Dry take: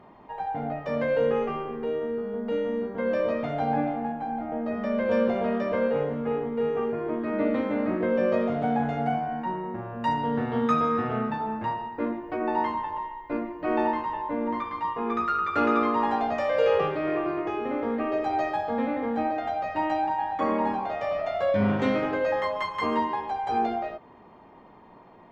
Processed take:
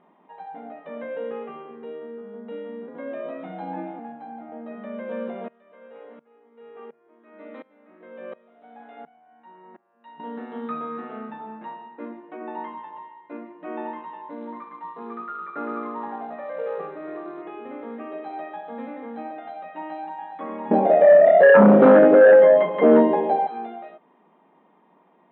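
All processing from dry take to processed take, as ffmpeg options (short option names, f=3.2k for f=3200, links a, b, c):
-filter_complex "[0:a]asettb=1/sr,asplit=3[a][b][c];[a]atrim=end=2.884[d];[b]atrim=start=2.88:end=3.99,asetpts=PTS-STARTPTS,afade=t=in:d=0.004:c=qsin,afade=t=out:st=1.106:d=0.004:c=qsin,acompressor=mode=upward:threshold=-28dB:ratio=2.5:attack=3.2:release=140:knee=2.83:detection=peak,afreqshift=39,equalizer=f=120:w=2.1:g=14.5[e];[c]atrim=start=3.986[f];[d][e]acrossfade=d=0.004:c1=hsin:c2=qsin[g];[g][f]acrossfade=d=0.004:c1=qsin:c2=hsin,asettb=1/sr,asplit=3[h][i][j];[h]atrim=end=5.484[k];[i]atrim=start=5.48:end=10.2,asetpts=PTS-STARTPTS,afade=t=in:d=0.004:c=qsin,afade=t=out:st=4.716:d=0.004:c=qsin,highpass=f=570:p=1,aeval=exprs='val(0)*pow(10,-23*if(lt(mod(-1.4*n/s,1),2*abs(-1.4)/1000),1-mod(-1.4*n/s,1)/(2*abs(-1.4)/1000),(mod(-1.4*n/s,1)-2*abs(-1.4)/1000)/(1-2*abs(-1.4)/1000))/20)':c=same[l];[j]atrim=start=10.196[m];[k][l]acrossfade=d=0.004:c1=hsin:c2=qsin[n];[n][m]acrossfade=d=0.004:c1=qsin:c2=hsin,asettb=1/sr,asplit=3[o][p][q];[o]atrim=end=14.304[r];[p]atrim=start=14.3:end=17.42,asetpts=PTS-STARTPTS,afade=t=in:d=0.004:c=qsin,afade=t=out:st=3.116:d=0.004:c=qsin,lowpass=f=2.1k:w=0.5412,lowpass=f=2.1k:w=1.3066,acrusher=bits=5:mode=log:mix=0:aa=0.000001[s];[q]atrim=start=17.416[t];[r][s]acrossfade=d=0.004:c1=hsin:c2=qsin[u];[u][t]acrossfade=d=0.004:c1=qsin:c2=hsin,asettb=1/sr,asplit=3[v][w][x];[v]atrim=end=20.714[y];[w]atrim=start=20.71:end=23.47,asetpts=PTS-STARTPTS,afade=t=in:d=0.004:c=qsin,afade=t=out:st=2.756:d=0.004:c=qsin,lowshelf=f=780:t=q:w=3:g=9.5,aeval=exprs='1*sin(PI/2*2.51*val(0)/1)':c=same[z];[x]atrim=start=23.466[aa];[y][z]acrossfade=d=0.004:c1=hsin:c2=qsin[ab];[ab][aa]acrossfade=d=0.004:c1=qsin:c2=hsin,acrossover=split=2500[ac][ad];[ad]acompressor=threshold=-50dB:ratio=4:attack=1:release=60[ae];[ac][ae]amix=inputs=2:normalize=0,afftfilt=real='re*between(b*sr/4096,160,4100)':imag='im*between(b*sr/4096,160,4100)':win_size=4096:overlap=0.75,volume=-7.5dB"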